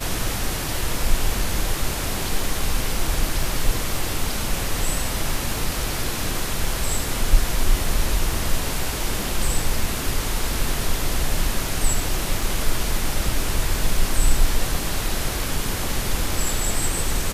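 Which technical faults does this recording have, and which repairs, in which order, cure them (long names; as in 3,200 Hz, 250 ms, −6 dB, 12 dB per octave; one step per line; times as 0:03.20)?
0:03.43: drop-out 2.3 ms
0:12.41: drop-out 2.4 ms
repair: repair the gap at 0:03.43, 2.3 ms
repair the gap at 0:12.41, 2.4 ms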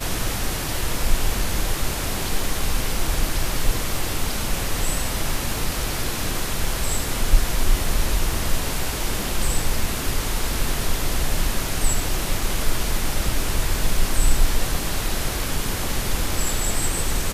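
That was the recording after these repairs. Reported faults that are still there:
none of them is left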